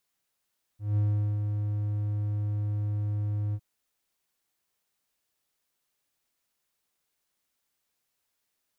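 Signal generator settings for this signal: ADSR triangle 104 Hz, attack 0.178 s, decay 0.408 s, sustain -5 dB, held 2.75 s, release 56 ms -19.5 dBFS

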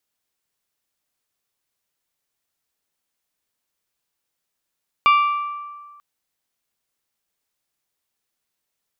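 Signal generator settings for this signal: glass hit bell, length 0.94 s, lowest mode 1170 Hz, decay 1.62 s, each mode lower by 7 dB, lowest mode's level -10 dB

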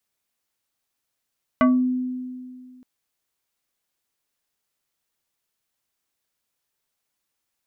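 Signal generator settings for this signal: FM tone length 1.22 s, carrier 253 Hz, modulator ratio 3.5, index 1.5, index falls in 0.29 s exponential, decay 2.15 s, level -12 dB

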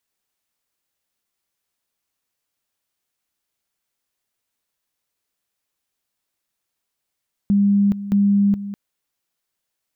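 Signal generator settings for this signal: two-level tone 201 Hz -12.5 dBFS, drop 13.5 dB, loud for 0.42 s, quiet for 0.20 s, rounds 2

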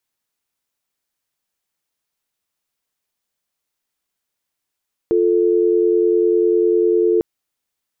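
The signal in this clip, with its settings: call progress tone dial tone, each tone -15 dBFS 2.10 s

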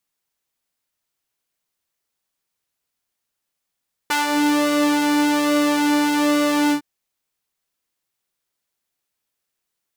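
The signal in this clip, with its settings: synth patch with pulse-width modulation D4, detune 16 cents, sub -18 dB, filter highpass, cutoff 140 Hz, Q 1.1, filter envelope 3 oct, filter sustain 45%, attack 9.6 ms, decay 0.16 s, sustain -5 dB, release 0.10 s, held 2.61 s, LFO 1.2 Hz, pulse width 45%, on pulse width 10%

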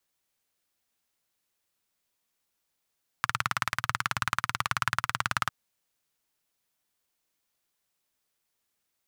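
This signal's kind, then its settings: single-cylinder engine model, steady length 2.25 s, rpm 2200, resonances 120/1300 Hz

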